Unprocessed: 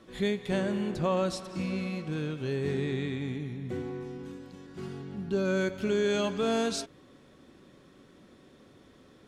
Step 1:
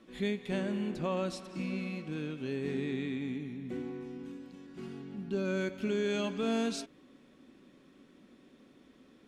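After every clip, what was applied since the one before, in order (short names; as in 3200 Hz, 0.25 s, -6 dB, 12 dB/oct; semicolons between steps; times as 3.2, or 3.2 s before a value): fifteen-band EQ 100 Hz -9 dB, 250 Hz +8 dB, 2500 Hz +5 dB; gain -6.5 dB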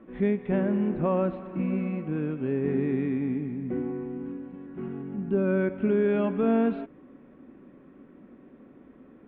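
Gaussian blur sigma 4.6 samples; gain +8.5 dB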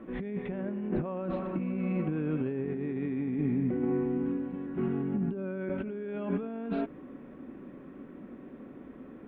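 negative-ratio compressor -32 dBFS, ratio -1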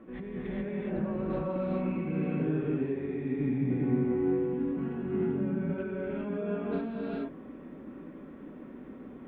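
non-linear reverb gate 0.45 s rising, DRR -5 dB; gain -5 dB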